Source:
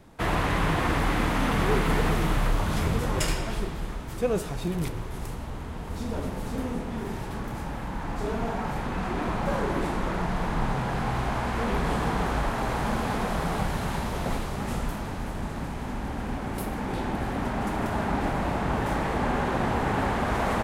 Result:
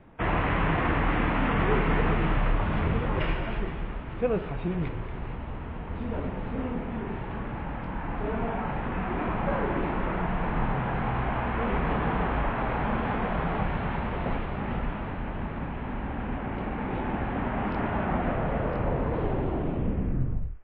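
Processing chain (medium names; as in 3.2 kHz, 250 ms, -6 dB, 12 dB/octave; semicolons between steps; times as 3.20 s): tape stop on the ending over 2.72 s; steep low-pass 2.9 kHz 36 dB/octave; de-hum 404 Hz, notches 9; on a send: feedback echo behind a high-pass 233 ms, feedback 41%, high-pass 1.4 kHz, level -10 dB; on the sum: buffer glitch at 7.82/17.70/18.71 s, samples 1024, times 1; MP3 24 kbps 12 kHz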